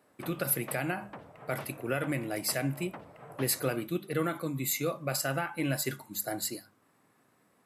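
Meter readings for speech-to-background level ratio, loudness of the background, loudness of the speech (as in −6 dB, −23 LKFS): 16.0 dB, −48.5 LKFS, −32.5 LKFS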